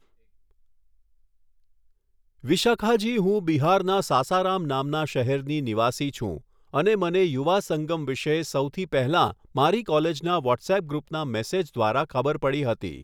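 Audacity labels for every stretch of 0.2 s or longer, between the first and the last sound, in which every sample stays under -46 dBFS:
6.420000	6.730000	silence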